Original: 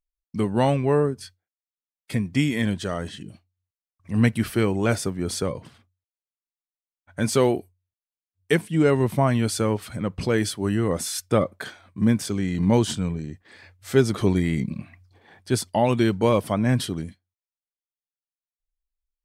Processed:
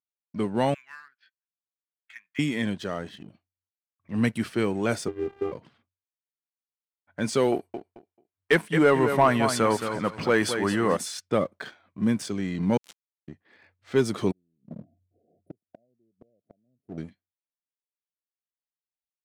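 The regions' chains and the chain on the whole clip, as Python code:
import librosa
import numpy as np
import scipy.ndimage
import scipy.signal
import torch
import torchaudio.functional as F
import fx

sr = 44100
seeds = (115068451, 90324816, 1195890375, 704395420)

y = fx.chain(x, sr, fx.ellip_bandpass(low_hz=1500.0, high_hz=6300.0, order=3, stop_db=50),
    fx.air_absorb(metres=380.0),
    fx.leveller(passes=1), at=(0.74, 2.39))
y = fx.chain(y, sr, fx.cvsd(bps=16000),
    fx.tilt_eq(slope=-3.0),
    fx.robotise(hz=397.0), at=(5.08, 5.52))
y = fx.chain(y, sr, fx.peak_eq(hz=1200.0, db=10.0, octaves=2.3),
    fx.echo_feedback(ms=219, feedback_pct=26, wet_db=-9.0), at=(7.52, 10.97))
y = fx.chain(y, sr, fx.highpass(hz=1200.0, slope=24),
    fx.high_shelf(hz=2300.0, db=-9.5),
    fx.sample_gate(floor_db=-29.5), at=(12.77, 13.28))
y = fx.chain(y, sr, fx.gate_flip(shuts_db=-16.0, range_db=-40),
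    fx.overload_stage(gain_db=28.0),
    fx.brickwall_bandstop(low_hz=740.0, high_hz=9300.0), at=(14.31, 16.98))
y = scipy.signal.sosfilt(scipy.signal.butter(2, 150.0, 'highpass', fs=sr, output='sos'), y)
y = fx.env_lowpass(y, sr, base_hz=2900.0, full_db=-16.5)
y = fx.leveller(y, sr, passes=1)
y = F.gain(torch.from_numpy(y), -6.5).numpy()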